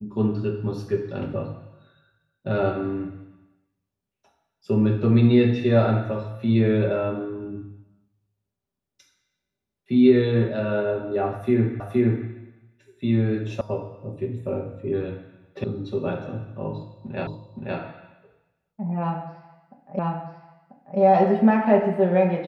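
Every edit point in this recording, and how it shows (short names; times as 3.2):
11.8 repeat of the last 0.47 s
13.61 sound cut off
15.64 sound cut off
17.27 repeat of the last 0.52 s
19.99 repeat of the last 0.99 s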